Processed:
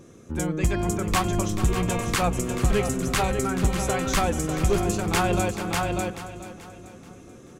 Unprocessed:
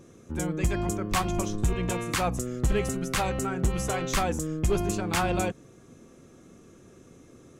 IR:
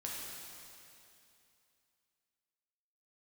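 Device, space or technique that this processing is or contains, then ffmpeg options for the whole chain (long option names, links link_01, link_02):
ducked delay: -filter_complex "[0:a]asplit=3[link_01][link_02][link_03];[link_02]adelay=595,volume=-3dB[link_04];[link_03]apad=whole_len=361336[link_05];[link_04][link_05]sidechaincompress=threshold=-33dB:ratio=4:attack=43:release=232[link_06];[link_01][link_06]amix=inputs=2:normalize=0,aecho=1:1:434|868|1302|1736:0.237|0.102|0.0438|0.0189,volume=3dB"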